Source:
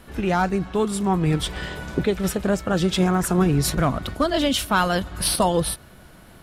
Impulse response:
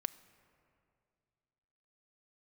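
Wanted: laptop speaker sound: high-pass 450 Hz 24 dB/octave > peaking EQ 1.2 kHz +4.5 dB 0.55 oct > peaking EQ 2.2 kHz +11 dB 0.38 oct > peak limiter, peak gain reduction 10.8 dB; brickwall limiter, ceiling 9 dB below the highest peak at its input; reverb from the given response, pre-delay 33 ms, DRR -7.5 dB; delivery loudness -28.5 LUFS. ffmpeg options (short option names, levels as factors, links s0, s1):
-filter_complex "[0:a]alimiter=limit=0.133:level=0:latency=1,asplit=2[s0][s1];[1:a]atrim=start_sample=2205,adelay=33[s2];[s1][s2]afir=irnorm=-1:irlink=0,volume=2.66[s3];[s0][s3]amix=inputs=2:normalize=0,highpass=f=450:w=0.5412,highpass=f=450:w=1.3066,equalizer=f=1200:t=o:w=0.55:g=4.5,equalizer=f=2200:t=o:w=0.38:g=11,volume=0.531,alimiter=limit=0.112:level=0:latency=1"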